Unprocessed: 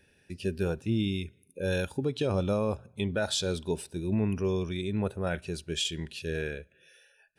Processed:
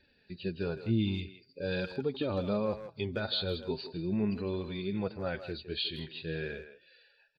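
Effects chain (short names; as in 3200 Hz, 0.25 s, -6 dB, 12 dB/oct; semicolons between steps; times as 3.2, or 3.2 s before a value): nonlinear frequency compression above 3600 Hz 4:1; flange 0.44 Hz, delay 3.2 ms, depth 6.5 ms, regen +27%; speakerphone echo 0.16 s, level -10 dB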